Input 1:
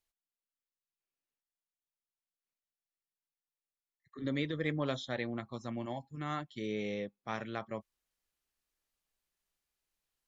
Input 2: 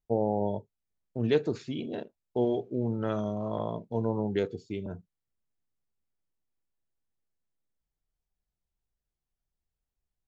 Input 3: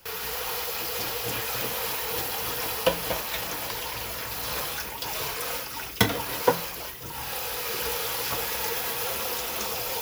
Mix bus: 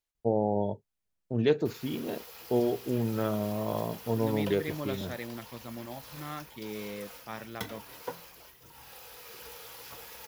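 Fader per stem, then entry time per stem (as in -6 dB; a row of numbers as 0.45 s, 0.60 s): -2.5 dB, +0.5 dB, -17.0 dB; 0.00 s, 0.15 s, 1.60 s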